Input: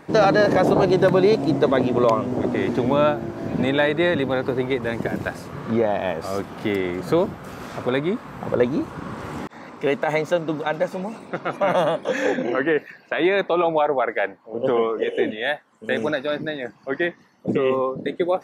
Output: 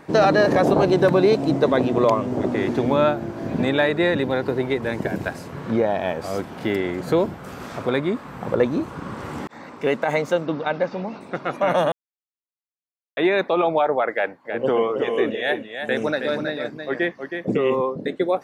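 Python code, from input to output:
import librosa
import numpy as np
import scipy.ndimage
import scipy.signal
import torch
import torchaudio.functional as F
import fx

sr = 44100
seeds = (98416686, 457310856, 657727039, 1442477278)

y = fx.notch(x, sr, hz=1200.0, q=12.0, at=(3.96, 7.39))
y = fx.steep_lowpass(y, sr, hz=5400.0, slope=36, at=(10.46, 11.21))
y = fx.echo_single(y, sr, ms=320, db=-7.0, at=(14.13, 17.81))
y = fx.edit(y, sr, fx.silence(start_s=11.92, length_s=1.25), tone=tone)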